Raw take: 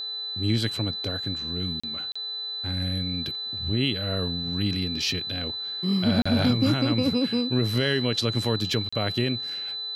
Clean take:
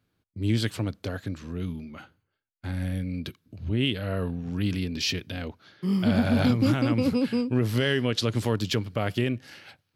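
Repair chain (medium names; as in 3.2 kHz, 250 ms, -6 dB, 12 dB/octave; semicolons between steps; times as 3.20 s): de-hum 423.9 Hz, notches 4; band-stop 4 kHz, Q 30; interpolate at 1.80/2.12/6.22/8.89 s, 35 ms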